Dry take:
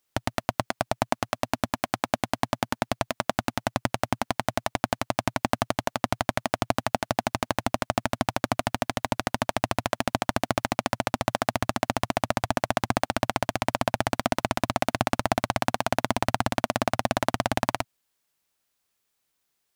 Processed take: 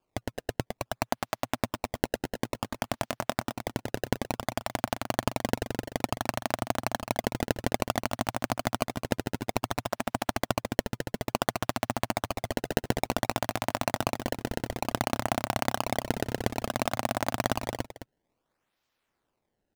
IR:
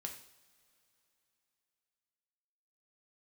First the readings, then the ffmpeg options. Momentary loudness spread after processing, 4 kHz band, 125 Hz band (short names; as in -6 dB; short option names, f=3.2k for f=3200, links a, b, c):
5 LU, -3.5 dB, -2.5 dB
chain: -filter_complex "[0:a]acrusher=samples=22:mix=1:aa=0.000001:lfo=1:lforange=35.2:lforate=0.57,asplit=2[a][b];[b]aecho=0:1:213:0.282[c];[a][c]amix=inputs=2:normalize=0,volume=-4dB"